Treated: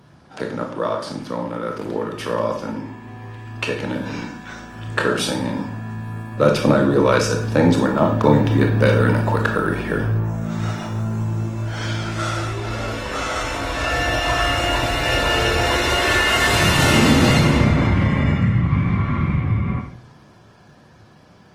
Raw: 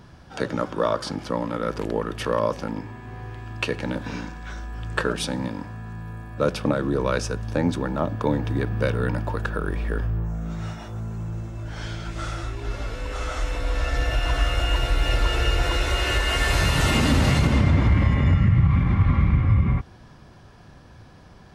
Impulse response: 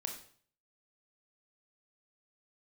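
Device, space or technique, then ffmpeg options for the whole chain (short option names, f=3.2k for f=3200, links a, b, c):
far-field microphone of a smart speaker: -filter_complex "[1:a]atrim=start_sample=2205[a];[0:a][a]afir=irnorm=-1:irlink=0,highpass=110,dynaudnorm=f=820:g=13:m=11.5dB,volume=1.5dB" -ar 48000 -c:a libopus -b:a 24k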